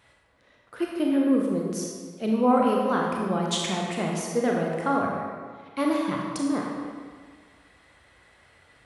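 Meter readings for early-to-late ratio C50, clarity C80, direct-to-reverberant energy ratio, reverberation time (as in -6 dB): 0.5 dB, 2.5 dB, -1.5 dB, 1.6 s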